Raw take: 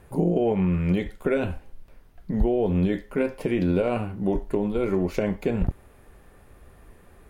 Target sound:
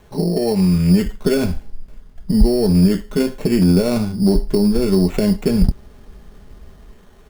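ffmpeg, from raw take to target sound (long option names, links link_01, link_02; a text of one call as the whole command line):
ffmpeg -i in.wav -filter_complex "[0:a]equalizer=frequency=4300:width=1.5:gain=7.5,aecho=1:1:4.8:0.44,acrossover=split=300[link_01][link_02];[link_01]dynaudnorm=framelen=160:gausssize=9:maxgain=9dB[link_03];[link_03][link_02]amix=inputs=2:normalize=0,bandreject=frequency=2400:width=16,asplit=2[link_04][link_05];[link_05]asoftclip=type=tanh:threshold=-13.5dB,volume=-9.5dB[link_06];[link_04][link_06]amix=inputs=2:normalize=0,acrusher=samples=9:mix=1:aa=0.000001" out.wav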